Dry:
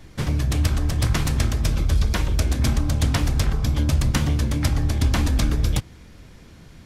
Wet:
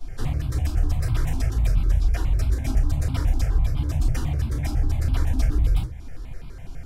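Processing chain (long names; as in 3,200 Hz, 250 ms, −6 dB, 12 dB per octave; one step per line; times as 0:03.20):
downward compressor 2.5 to 1, threshold −31 dBFS, peak gain reduction 11 dB
rectangular room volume 140 cubic metres, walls furnished, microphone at 5.2 metres
step-sequenced phaser 12 Hz 510–1,800 Hz
level −7 dB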